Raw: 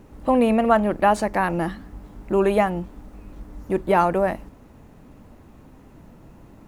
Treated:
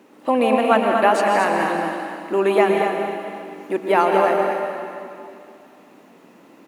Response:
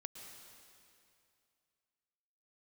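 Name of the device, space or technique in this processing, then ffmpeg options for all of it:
stadium PA: -filter_complex "[0:a]highpass=f=240:w=0.5412,highpass=f=240:w=1.3066,equalizer=f=2.8k:t=o:w=1.7:g=5,aecho=1:1:166.2|236.2:0.316|0.501[a];[1:a]atrim=start_sample=2205[b];[a][b]afir=irnorm=-1:irlink=0,volume=5.5dB"

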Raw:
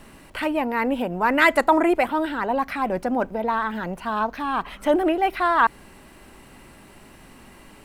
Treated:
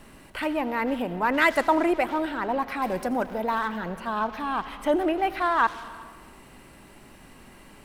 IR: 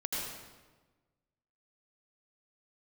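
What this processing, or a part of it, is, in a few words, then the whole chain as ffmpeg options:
saturated reverb return: -filter_complex "[0:a]asplit=2[a][b];[1:a]atrim=start_sample=2205[c];[b][c]afir=irnorm=-1:irlink=0,asoftclip=type=tanh:threshold=-21.5dB,volume=-10.5dB[d];[a][d]amix=inputs=2:normalize=0,asettb=1/sr,asplit=3[e][f][g];[e]atrim=end=2.824[h];[f]atrim=start=2.82:end=3.68,asetpts=PTS-STARTPTS,afade=t=in:d=0.004:c=qsin,afade=t=out:st=0.856:d=0.004:c=qsin,highshelf=f=4.5k:g=10.5[i];[g]atrim=start=3.676[j];[h][i]acrossfade=d=0.004:c1=hsin:c2=qsin[k];[k][j]acrossfade=d=0.004:c1=qsin:c2=hsin,volume=-4.5dB"

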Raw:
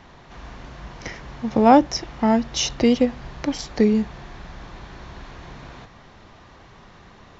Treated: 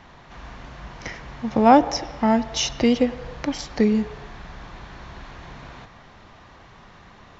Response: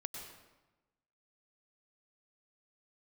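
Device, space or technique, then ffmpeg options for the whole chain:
filtered reverb send: -filter_complex "[0:a]asplit=2[a][b];[b]highpass=f=360:w=0.5412,highpass=f=360:w=1.3066,lowpass=3.8k[c];[1:a]atrim=start_sample=2205[d];[c][d]afir=irnorm=-1:irlink=0,volume=-8.5dB[e];[a][e]amix=inputs=2:normalize=0,volume=-1dB"

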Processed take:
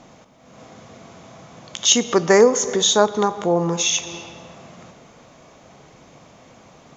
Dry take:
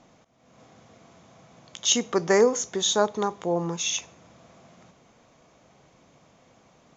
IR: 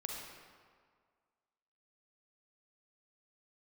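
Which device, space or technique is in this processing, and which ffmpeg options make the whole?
ducked reverb: -filter_complex "[0:a]asplit=3[a][b][c];[1:a]atrim=start_sample=2205[d];[b][d]afir=irnorm=-1:irlink=0[e];[c]apad=whole_len=307160[f];[e][f]sidechaincompress=threshold=-34dB:ratio=5:attack=16:release=248,volume=-1dB[g];[a][g]amix=inputs=2:normalize=0,volume=5.5dB"

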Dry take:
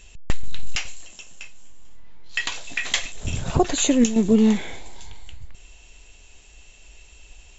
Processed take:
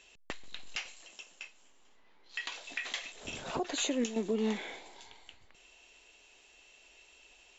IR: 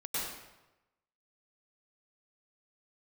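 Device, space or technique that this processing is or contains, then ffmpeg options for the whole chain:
DJ mixer with the lows and highs turned down: -filter_complex "[0:a]acrossover=split=260 6300:gain=0.0708 1 0.158[a][b][c];[a][b][c]amix=inputs=3:normalize=0,alimiter=limit=-17dB:level=0:latency=1:release=213,volume=-5.5dB"

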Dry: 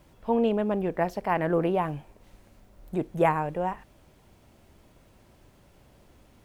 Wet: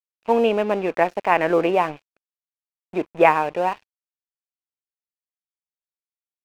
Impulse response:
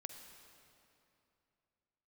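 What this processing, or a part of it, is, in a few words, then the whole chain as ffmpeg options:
pocket radio on a weak battery: -af "highpass=330,lowpass=3.9k,aeval=exprs='sgn(val(0))*max(abs(val(0))-0.00447,0)':c=same,equalizer=f=2.5k:t=o:w=0.34:g=8.5,volume=8.5dB"

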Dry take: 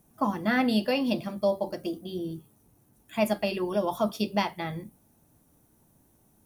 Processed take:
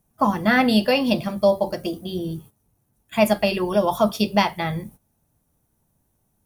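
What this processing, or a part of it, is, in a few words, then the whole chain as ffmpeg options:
low shelf boost with a cut just above: -af "lowshelf=f=81:g=6.5,equalizer=f=300:t=o:w=0.79:g=-5.5,agate=range=-14dB:threshold=-51dB:ratio=16:detection=peak,volume=8.5dB"

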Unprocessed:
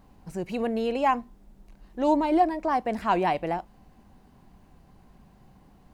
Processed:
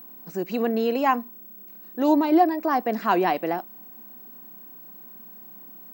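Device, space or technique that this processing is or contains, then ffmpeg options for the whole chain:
old television with a line whistle: -af "highpass=f=210:w=0.5412,highpass=f=210:w=1.3066,equalizer=f=580:t=q:w=4:g=-5,equalizer=f=880:t=q:w=4:g=-6,equalizer=f=2.3k:t=q:w=4:g=-5,equalizer=f=3.2k:t=q:w=4:g=-4,lowpass=f=6.8k:w=0.5412,lowpass=f=6.8k:w=1.3066,aeval=exprs='val(0)+0.00447*sin(2*PI*15734*n/s)':c=same,volume=5.5dB"

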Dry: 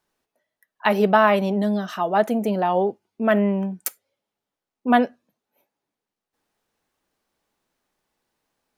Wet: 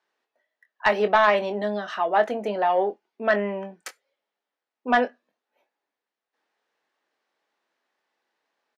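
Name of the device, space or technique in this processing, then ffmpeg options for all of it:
intercom: -filter_complex "[0:a]highpass=410,lowpass=4.5k,equalizer=f=1.8k:t=o:w=0.35:g=4.5,asoftclip=type=tanh:threshold=-9dB,asplit=2[a][b];[b]adelay=24,volume=-10dB[c];[a][c]amix=inputs=2:normalize=0"

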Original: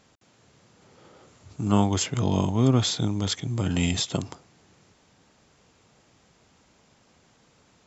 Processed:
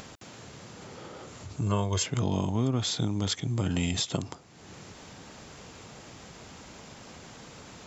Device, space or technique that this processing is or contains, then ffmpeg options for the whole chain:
upward and downward compression: -filter_complex "[0:a]asettb=1/sr,asplit=3[a][b][c];[a]atrim=end=1.614[d];[b]atrim=start=1.61:end=2.03,asetpts=PTS-STARTPTS,afade=t=in:d=0.004:c=qsin,afade=t=out:st=0.416:d=0.004:c=qsin,aecho=1:1:1.9:0.85,atrim=end_sample=18522[e];[c]atrim=start=2.026[f];[d][e]acrossfade=d=0.004:c1=hsin:c2=qsin[g];[g][f]acrossfade=d=0.004:c1=qsin:c2=hsin,acompressor=mode=upward:threshold=-34dB:ratio=2.5,acompressor=threshold=-25dB:ratio=3"

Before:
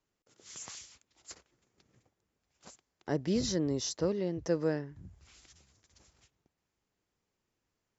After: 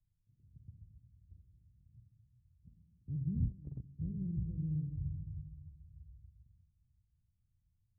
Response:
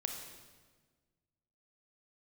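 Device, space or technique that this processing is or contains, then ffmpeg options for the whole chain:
club heard from the street: -filter_complex "[0:a]alimiter=level_in=1dB:limit=-24dB:level=0:latency=1:release=93,volume=-1dB,lowpass=f=120:w=0.5412,lowpass=f=120:w=1.3066[a];[1:a]atrim=start_sample=2205[b];[a][b]afir=irnorm=-1:irlink=0,asplit=3[c][d][e];[c]afade=t=out:st=3.48:d=0.02[f];[d]agate=range=-18dB:threshold=-44dB:ratio=16:detection=peak,afade=t=in:st=3.48:d=0.02,afade=t=out:st=3.98:d=0.02[g];[e]afade=t=in:st=3.98:d=0.02[h];[f][g][h]amix=inputs=3:normalize=0,volume=13.5dB"

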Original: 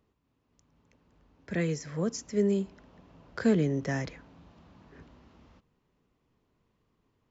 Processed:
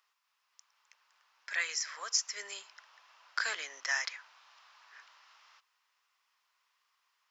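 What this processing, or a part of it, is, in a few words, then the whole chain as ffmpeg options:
headphones lying on a table: -af "highpass=f=1.1k:w=0.5412,highpass=f=1.1k:w=1.3066,equalizer=f=5.2k:t=o:w=0.38:g=6,volume=6.5dB"

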